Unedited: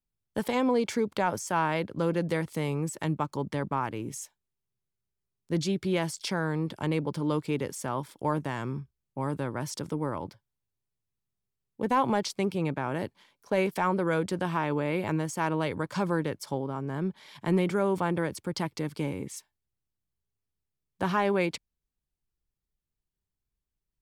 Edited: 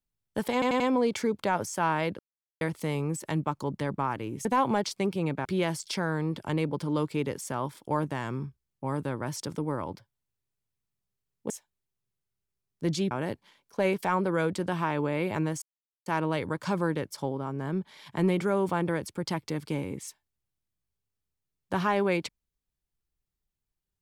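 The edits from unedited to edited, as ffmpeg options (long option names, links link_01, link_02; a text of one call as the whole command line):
ffmpeg -i in.wav -filter_complex "[0:a]asplit=11[link_01][link_02][link_03][link_04][link_05][link_06][link_07][link_08][link_09][link_10][link_11];[link_01]atrim=end=0.622[link_12];[link_02]atrim=start=0.528:end=0.622[link_13];[link_03]atrim=start=0.528:end=0.622[link_14];[link_04]atrim=start=0.528:end=1.92,asetpts=PTS-STARTPTS,afade=type=out:start_time=1.388:duration=0.004:curve=hsin[link_15];[link_05]atrim=start=1.92:end=2.34,asetpts=PTS-STARTPTS,volume=0[link_16];[link_06]atrim=start=2.34:end=4.182,asetpts=PTS-STARTPTS,afade=type=in:duration=0.004:curve=hsin[link_17];[link_07]atrim=start=11.838:end=12.842[link_18];[link_08]atrim=start=5.788:end=11.842[link_19];[link_09]atrim=start=4.178:end=5.792[link_20];[link_10]atrim=start=12.838:end=15.35,asetpts=PTS-STARTPTS,afade=type=out:start_time=2.508:duration=0.004:curve=hsin,apad=pad_dur=0.44[link_21];[link_11]atrim=start=15.35,asetpts=PTS-STARTPTS,afade=type=in:duration=0.004:curve=hsin[link_22];[link_12][link_13]acrossfade=duration=0.004:curve1=hsin:curve2=hsin[link_23];[link_23][link_14]acrossfade=duration=0.004:curve1=hsin:curve2=hsin[link_24];[link_15][link_16][link_17]concat=n=3:v=0:a=1[link_25];[link_24][link_25]acrossfade=duration=0.004:curve1=hsin:curve2=hsin[link_26];[link_26][link_18]acrossfade=duration=0.004:curve1=hsin:curve2=hsin[link_27];[link_27][link_19]acrossfade=duration=0.004:curve1=hsin:curve2=hsin[link_28];[link_28][link_20]acrossfade=duration=0.004:curve1=hsin:curve2=hsin[link_29];[link_21][link_22]concat=n=2:v=0:a=1[link_30];[link_29][link_30]acrossfade=duration=0.004:curve1=hsin:curve2=hsin" out.wav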